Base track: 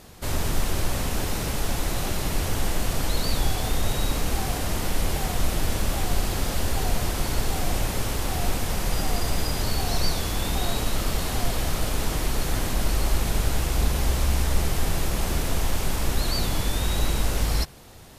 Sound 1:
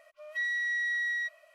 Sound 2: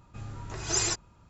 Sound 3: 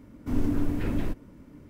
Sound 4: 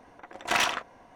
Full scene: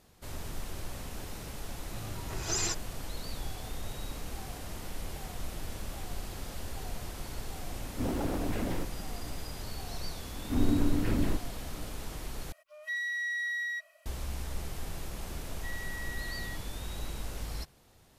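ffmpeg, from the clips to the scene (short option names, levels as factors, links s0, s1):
-filter_complex "[3:a]asplit=2[s0][s1];[1:a]asplit=2[s2][s3];[0:a]volume=0.188[s4];[2:a]alimiter=limit=0.106:level=0:latency=1:release=23[s5];[s0]aeval=exprs='0.0531*(abs(mod(val(0)/0.0531+3,4)-2)-1)':c=same[s6];[s2]crystalizer=i=1.5:c=0[s7];[s4]asplit=2[s8][s9];[s8]atrim=end=12.524[s10];[s7]atrim=end=1.54,asetpts=PTS-STARTPTS,volume=0.631[s11];[s9]atrim=start=14.056[s12];[s5]atrim=end=1.29,asetpts=PTS-STARTPTS,volume=0.75,afade=t=in:d=0.004:c=hsin,afade=t=out:st=1.286:d=0.004:c=hsin,adelay=1790[s13];[s6]atrim=end=1.69,asetpts=PTS-STARTPTS,volume=0.841,afade=t=in:d=0.004:c=hsin,afade=t=out:st=1.686:d=0.004:c=hsin,adelay=7720[s14];[s1]atrim=end=1.69,asetpts=PTS-STARTPTS,volume=0.944,afade=t=in:d=0.004:c=hsin,afade=t=out:st=1.686:d=0.004:c=hsin,adelay=10240[s15];[s3]atrim=end=1.54,asetpts=PTS-STARTPTS,volume=0.251,afade=t=in:d=0.004:c=hsin,afade=t=out:st=1.536:d=0.004:c=hsin,adelay=15280[s16];[s10][s11]acrossfade=d=0.004:c1=hsin:c2=hsin[s17];[s17][s12]acrossfade=d=0.004:c1=hsin:c2=hsin[s18];[s18][s13][s14][s15][s16]amix=inputs=5:normalize=0"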